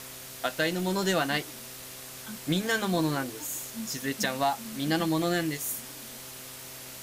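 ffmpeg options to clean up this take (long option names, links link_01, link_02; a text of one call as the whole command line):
ffmpeg -i in.wav -af "adeclick=threshold=4,bandreject=frequency=129.2:width_type=h:width=4,bandreject=frequency=258.4:width_type=h:width=4,bandreject=frequency=387.6:width_type=h:width=4,bandreject=frequency=516.8:width_type=h:width=4,bandreject=frequency=646:width_type=h:width=4,afftdn=noise_reduction=30:noise_floor=-43" out.wav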